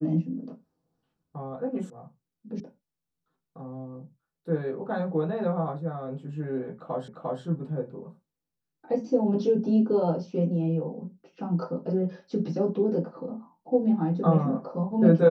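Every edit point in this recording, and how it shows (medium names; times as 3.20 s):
1.90 s: sound stops dead
2.60 s: sound stops dead
7.08 s: repeat of the last 0.35 s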